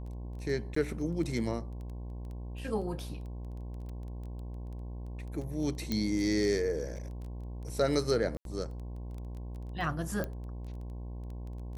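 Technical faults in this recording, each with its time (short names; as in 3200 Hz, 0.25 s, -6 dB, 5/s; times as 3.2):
buzz 60 Hz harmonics 18 -40 dBFS
crackle 11/s -40 dBFS
0.75–0.76 gap 14 ms
5.92 pop -18 dBFS
8.37–8.45 gap 82 ms
10.24 pop -21 dBFS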